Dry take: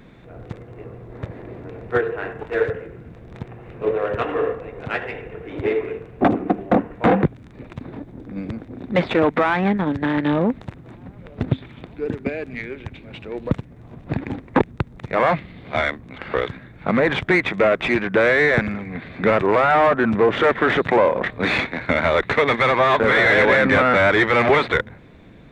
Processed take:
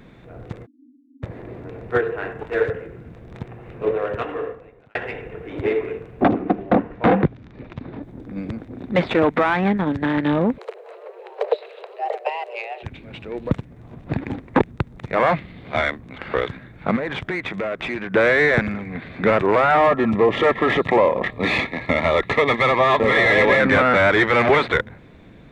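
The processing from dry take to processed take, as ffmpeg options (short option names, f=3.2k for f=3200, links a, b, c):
-filter_complex "[0:a]asplit=3[a][b][c];[a]afade=t=out:st=0.65:d=0.02[d];[b]asuperpass=centerf=270:order=8:qfactor=4.7,afade=t=in:st=0.65:d=0.02,afade=t=out:st=1.22:d=0.02[e];[c]afade=t=in:st=1.22:d=0.02[f];[d][e][f]amix=inputs=3:normalize=0,asettb=1/sr,asplit=3[g][h][i];[g]atrim=end=6.234[j];[h]atrim=start=6.23:end=8.03,asetpts=PTS-STARTPTS,afade=t=in:d=0.004:c=qsin,afade=t=out:st=1.796:d=0.004:c=qsin,lowpass=f=5.5k:w=0.5412,lowpass=f=5.5k:w=1.3066[k];[i]atrim=start=8.026[l];[j][k]acrossfade=d=0.004:c1=hsin:c2=qsin[m];[m][l]acrossfade=d=0.004:c1=qsin:c2=hsin,asplit=3[n][o][p];[n]afade=t=out:st=10.57:d=0.02[q];[o]afreqshift=340,afade=t=in:st=10.57:d=0.02,afade=t=out:st=12.82:d=0.02[r];[p]afade=t=in:st=12.82:d=0.02[s];[q][r][s]amix=inputs=3:normalize=0,asettb=1/sr,asplit=3[t][u][v];[t]atrim=end=16.964[w];[u]atrim=start=16.96:end=18.13,asetpts=PTS-STARTPTS,afade=t=in:d=0.004:c=qsin,afade=t=out:st=1.166:d=0.004:c=qsin,acompressor=threshold=-25dB:ratio=3:attack=3.2:release=140:knee=1:detection=peak[x];[v]atrim=start=18.126[y];[w][x]acrossfade=d=0.004:c1=hsin:c2=qsin[z];[z][y]acrossfade=d=0.004:c1=qsin:c2=hsin,asettb=1/sr,asplit=3[aa][ab][ac];[aa]atrim=end=19.774[ad];[ab]atrim=start=19.77:end=23.6,asetpts=PTS-STARTPTS,afade=t=in:d=0.004:c=qsin,afade=t=out:st=3.826:d=0.004:c=qsin,asuperstop=centerf=1500:order=20:qfactor=5.8[ae];[ac]atrim=start=23.596[af];[ad][ae]acrossfade=d=0.004:c1=hsin:c2=qsin[ag];[ag][af]acrossfade=d=0.004:c1=qsin:c2=hsin,asplit=2[ah][ai];[ah]atrim=end=4.95,asetpts=PTS-STARTPTS,afade=t=out:st=3.88:d=1.07[aj];[ai]atrim=start=4.95,asetpts=PTS-STARTPTS,afade=t=in:d=0.004:c=hsin[ak];[aj][ak]concat=n=2:v=0:a=1"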